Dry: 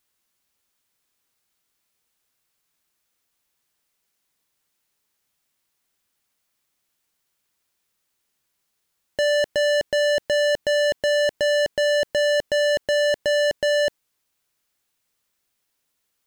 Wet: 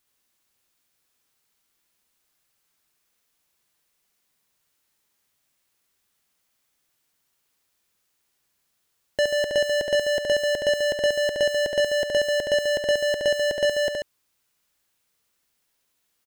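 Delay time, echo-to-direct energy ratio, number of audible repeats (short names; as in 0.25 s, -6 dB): 69 ms, -2.5 dB, 2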